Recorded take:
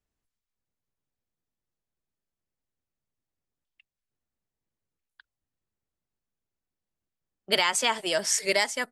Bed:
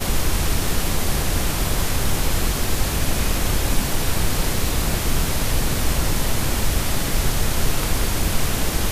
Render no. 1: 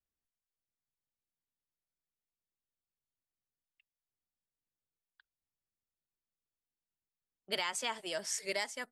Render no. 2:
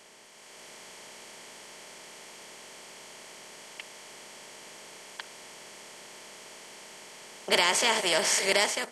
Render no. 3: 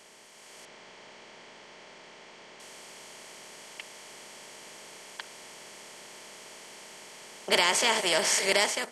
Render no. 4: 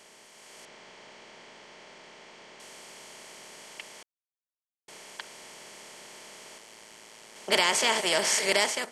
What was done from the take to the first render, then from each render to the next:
trim -11.5 dB
spectral levelling over time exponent 0.4; level rider gain up to 7.5 dB
0.65–2.60 s: distance through air 130 m
4.03–4.88 s: mute; 6.58–7.36 s: AM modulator 110 Hz, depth 50%

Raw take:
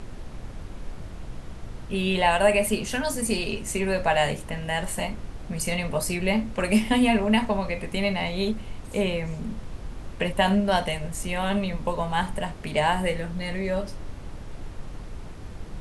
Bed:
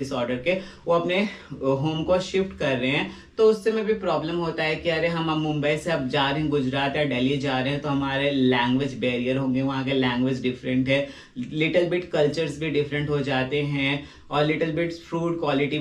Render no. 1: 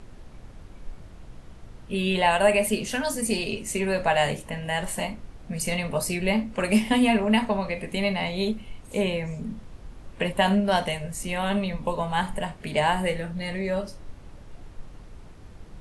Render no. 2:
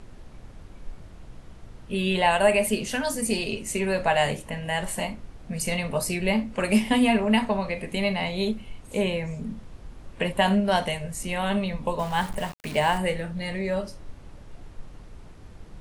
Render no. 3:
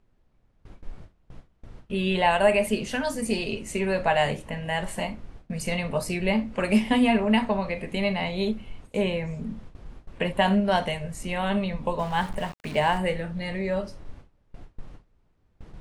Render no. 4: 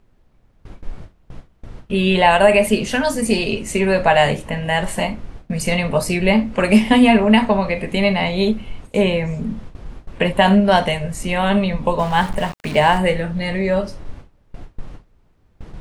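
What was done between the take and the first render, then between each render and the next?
noise print and reduce 7 dB
11.99–12.98 s: small samples zeroed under -36 dBFS
gate with hold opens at -32 dBFS; treble shelf 6.5 kHz -10.5 dB
trim +9 dB; peak limiter -2 dBFS, peak gain reduction 3 dB

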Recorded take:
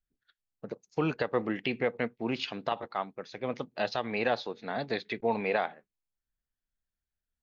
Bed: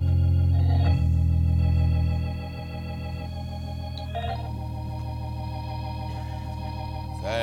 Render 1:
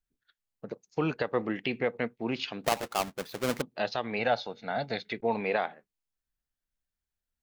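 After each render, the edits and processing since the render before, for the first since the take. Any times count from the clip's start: 2.64–3.62 s: square wave that keeps the level; 4.19–5.13 s: comb 1.4 ms, depth 52%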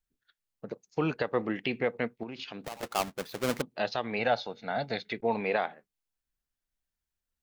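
2.23–2.83 s: compression 8:1, threshold -36 dBFS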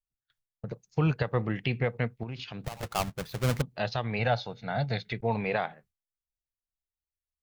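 gate with hold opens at -51 dBFS; resonant low shelf 180 Hz +12.5 dB, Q 1.5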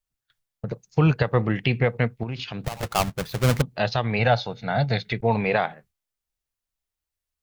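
trim +7 dB

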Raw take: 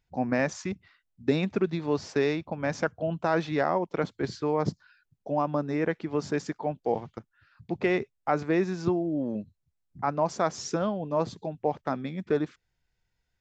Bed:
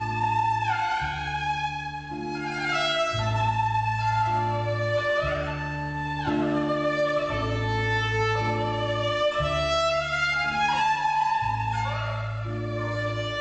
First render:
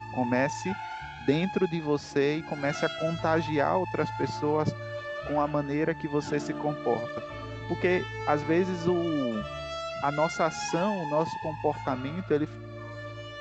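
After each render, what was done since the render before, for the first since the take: add bed -11.5 dB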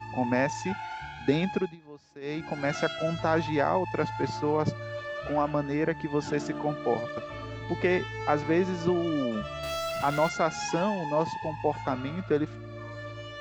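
1.55–2.42 s: dip -20 dB, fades 0.21 s; 9.63–10.29 s: jump at every zero crossing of -35 dBFS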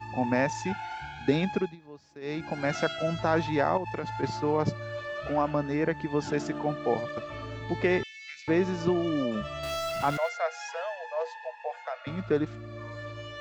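3.77–4.23 s: compression, threshold -28 dBFS; 8.03–8.48 s: elliptic high-pass 2.1 kHz, stop band 50 dB; 10.17–12.07 s: rippled Chebyshev high-pass 470 Hz, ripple 9 dB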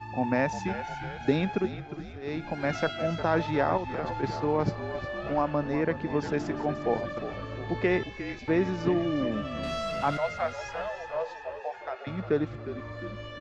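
distance through air 79 m; on a send: frequency-shifting echo 355 ms, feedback 57%, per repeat -49 Hz, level -11.5 dB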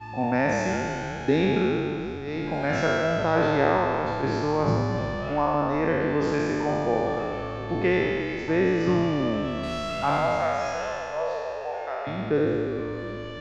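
spectral sustain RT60 2.55 s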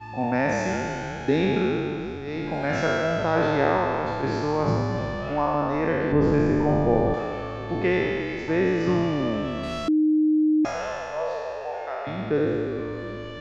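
6.12–7.14 s: tilt EQ -3 dB/octave; 9.88–10.65 s: bleep 308 Hz -16.5 dBFS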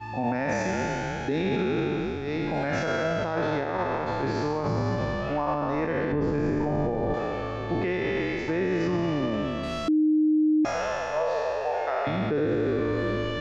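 gain riding 2 s; peak limiter -18 dBFS, peak gain reduction 10.5 dB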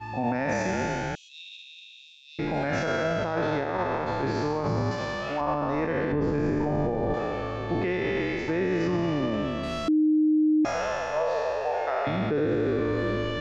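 1.15–2.39 s: rippled Chebyshev high-pass 2.6 kHz, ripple 6 dB; 4.91–5.41 s: tilt EQ +2.5 dB/octave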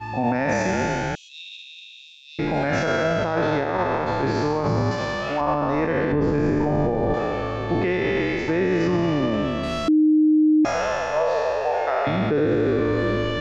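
trim +5 dB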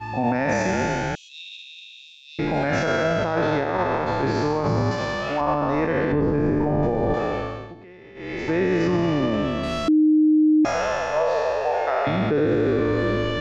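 6.21–6.83 s: low-pass 1.7 kHz 6 dB/octave; 7.36–8.54 s: dip -22.5 dB, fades 0.39 s

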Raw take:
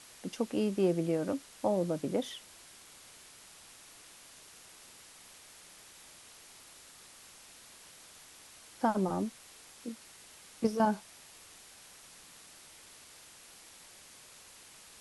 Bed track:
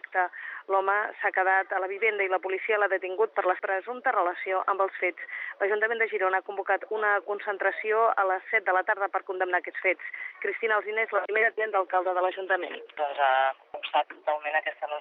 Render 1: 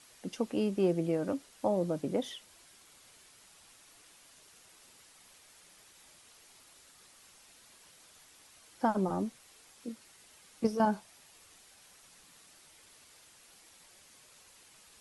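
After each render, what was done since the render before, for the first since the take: noise reduction 6 dB, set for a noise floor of -55 dBFS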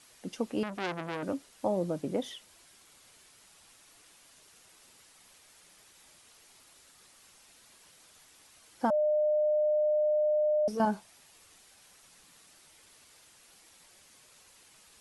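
0.63–1.23 s: transformer saturation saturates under 2.4 kHz; 8.90–10.68 s: bleep 605 Hz -23.5 dBFS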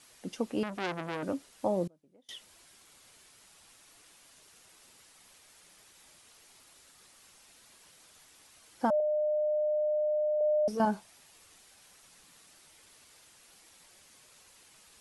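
1.87–2.29 s: inverted gate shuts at -37 dBFS, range -31 dB; 9.00–10.41 s: high-pass 520 Hz 6 dB/octave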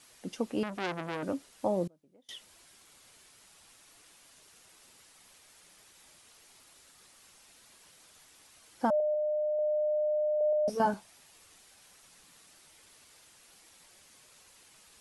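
9.14–9.59 s: distance through air 420 m; 10.51–10.94 s: doubling 16 ms -4.5 dB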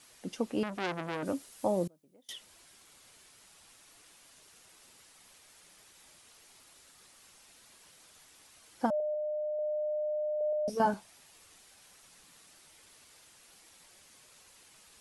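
1.25–2.33 s: treble shelf 7.5 kHz +11 dB; 8.86–10.77 s: peaking EQ 1.1 kHz -7 dB 1.9 oct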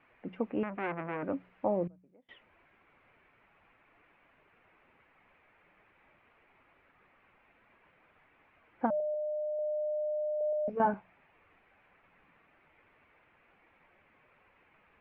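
elliptic low-pass 2.4 kHz, stop band 80 dB; de-hum 61 Hz, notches 3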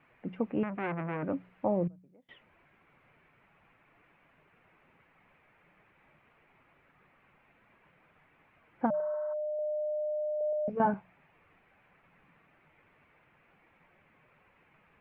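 8.97–9.30 s: spectral replace 890–2000 Hz before; peaking EQ 150 Hz +8 dB 0.86 oct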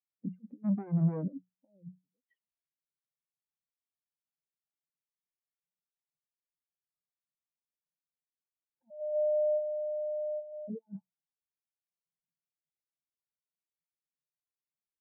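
compressor with a negative ratio -36 dBFS, ratio -0.5; spectral contrast expander 2.5:1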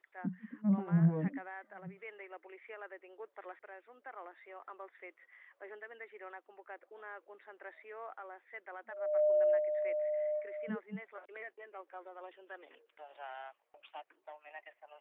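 add bed track -23.5 dB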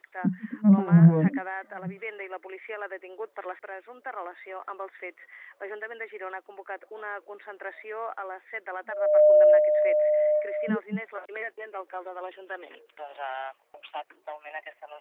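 trim +12 dB

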